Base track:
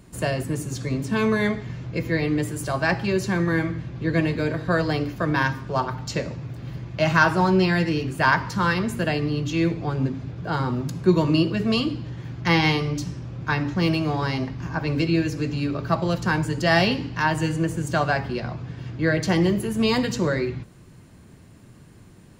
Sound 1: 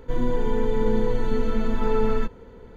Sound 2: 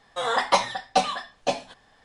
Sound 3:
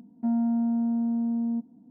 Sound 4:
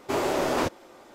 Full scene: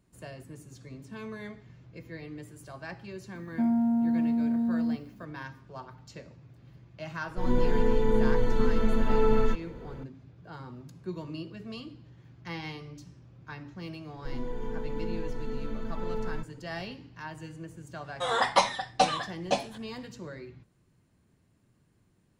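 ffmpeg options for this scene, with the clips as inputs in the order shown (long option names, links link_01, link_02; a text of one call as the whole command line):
ffmpeg -i bed.wav -i cue0.wav -i cue1.wav -i cue2.wav -filter_complex "[1:a]asplit=2[link_01][link_02];[0:a]volume=-19dB[link_03];[3:a]crystalizer=i=5.5:c=0[link_04];[link_01]dynaudnorm=framelen=110:gausssize=3:maxgain=11.5dB[link_05];[link_04]atrim=end=1.9,asetpts=PTS-STARTPTS,volume=-0.5dB,afade=type=in:duration=0.004:curve=hsin,afade=type=out:start_time=1.896:duration=0.004:curve=hsin,adelay=3350[link_06];[link_05]atrim=end=2.76,asetpts=PTS-STARTPTS,volume=-10dB,afade=type=in:duration=0.004:curve=hsin,afade=type=out:start_time=2.756:duration=0.004:curve=hsin,adelay=7280[link_07];[link_02]atrim=end=2.76,asetpts=PTS-STARTPTS,volume=-12dB,afade=type=in:duration=0.004:curve=hsin,afade=type=out:start_time=2.756:duration=0.004:curve=hsin,adelay=14160[link_08];[2:a]atrim=end=2.04,asetpts=PTS-STARTPTS,volume=-2.5dB,afade=type=in:duration=0.004:curve=hsin,afade=type=out:start_time=2.036:duration=0.004:curve=hsin,adelay=18040[link_09];[link_03][link_06][link_07][link_08][link_09]amix=inputs=5:normalize=0" out.wav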